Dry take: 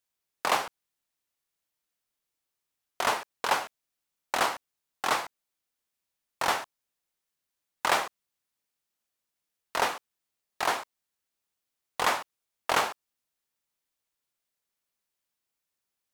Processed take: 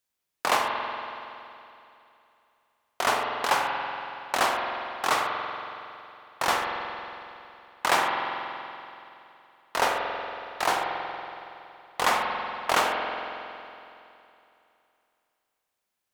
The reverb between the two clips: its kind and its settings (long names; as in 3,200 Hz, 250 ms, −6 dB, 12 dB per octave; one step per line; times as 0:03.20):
spring reverb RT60 2.8 s, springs 46 ms, chirp 35 ms, DRR 1 dB
level +1.5 dB